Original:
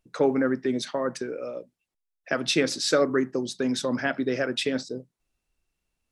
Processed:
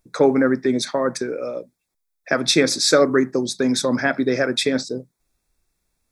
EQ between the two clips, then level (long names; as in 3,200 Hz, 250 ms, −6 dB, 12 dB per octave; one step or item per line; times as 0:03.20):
Butterworth band-reject 2,900 Hz, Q 3.9
high-shelf EQ 6,700 Hz +5.5 dB
+6.5 dB